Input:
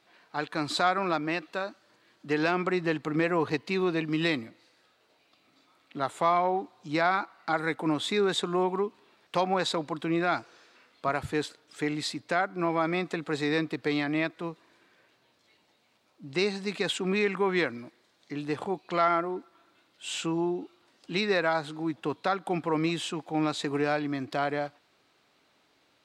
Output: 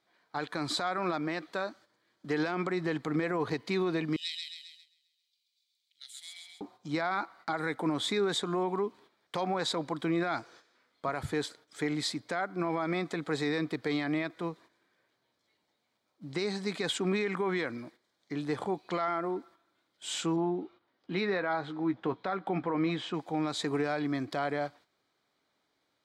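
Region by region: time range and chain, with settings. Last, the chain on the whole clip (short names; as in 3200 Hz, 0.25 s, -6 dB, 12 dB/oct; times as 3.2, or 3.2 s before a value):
4.16–6.61 inverse Chebyshev high-pass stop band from 1200 Hz, stop band 50 dB + feedback echo 0.133 s, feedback 53%, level -3.5 dB
20.36–23.14 LPF 3000 Hz + doubler 16 ms -11 dB
whole clip: gate -53 dBFS, range -10 dB; notch 2700 Hz, Q 6.4; limiter -21.5 dBFS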